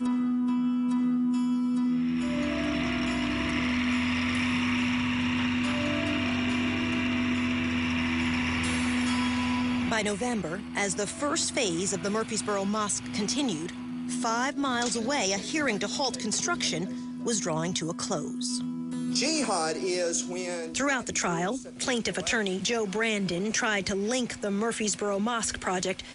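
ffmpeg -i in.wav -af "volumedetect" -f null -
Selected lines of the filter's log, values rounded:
mean_volume: -28.3 dB
max_volume: -14.8 dB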